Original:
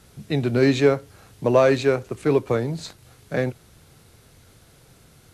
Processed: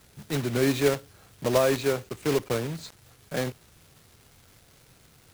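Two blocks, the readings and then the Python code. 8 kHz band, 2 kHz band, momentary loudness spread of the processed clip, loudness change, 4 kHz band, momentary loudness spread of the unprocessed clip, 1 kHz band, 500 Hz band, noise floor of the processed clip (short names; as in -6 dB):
+5.0 dB, -4.5 dB, 12 LU, -5.5 dB, -0.5 dB, 12 LU, -5.0 dB, -6.0 dB, -58 dBFS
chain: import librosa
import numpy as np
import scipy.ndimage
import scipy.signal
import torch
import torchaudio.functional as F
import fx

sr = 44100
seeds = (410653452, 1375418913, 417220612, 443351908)

y = fx.block_float(x, sr, bits=3)
y = fx.dmg_crackle(y, sr, seeds[0], per_s=510.0, level_db=-40.0)
y = y * librosa.db_to_amplitude(-6.0)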